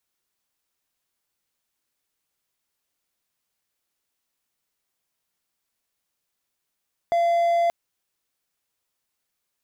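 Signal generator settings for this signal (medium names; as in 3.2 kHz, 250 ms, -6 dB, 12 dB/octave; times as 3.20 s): tone triangle 684 Hz -15.5 dBFS 0.58 s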